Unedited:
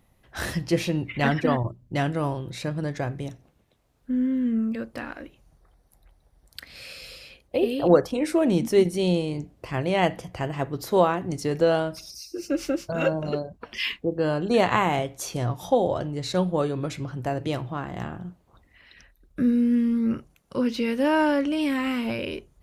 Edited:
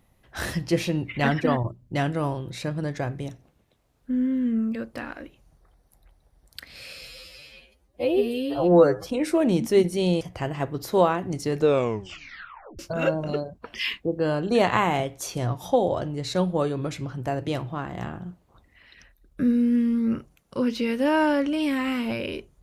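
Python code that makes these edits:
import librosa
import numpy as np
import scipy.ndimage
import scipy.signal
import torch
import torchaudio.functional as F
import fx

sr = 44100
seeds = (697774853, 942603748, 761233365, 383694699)

y = fx.edit(x, sr, fx.stretch_span(start_s=7.08, length_s=0.99, factor=2.0),
    fx.cut(start_s=9.22, length_s=0.98),
    fx.tape_stop(start_s=11.54, length_s=1.24), tone=tone)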